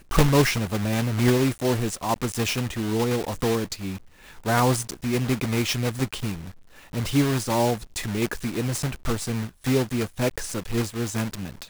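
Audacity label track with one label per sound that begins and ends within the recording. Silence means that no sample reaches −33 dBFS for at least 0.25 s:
4.460000	6.500000	sound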